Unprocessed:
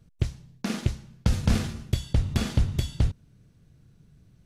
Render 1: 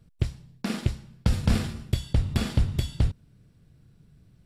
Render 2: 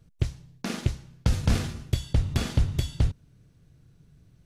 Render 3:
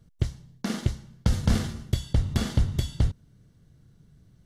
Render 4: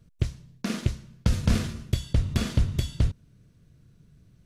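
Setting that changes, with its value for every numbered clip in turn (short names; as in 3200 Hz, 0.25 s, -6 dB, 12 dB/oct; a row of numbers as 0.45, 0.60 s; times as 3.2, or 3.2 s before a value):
notch, frequency: 6300, 210, 2500, 810 Hz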